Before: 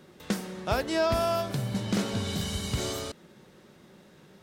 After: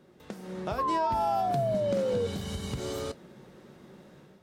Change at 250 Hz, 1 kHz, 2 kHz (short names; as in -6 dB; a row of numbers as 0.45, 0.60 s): -4.5, +5.0, -8.0 dB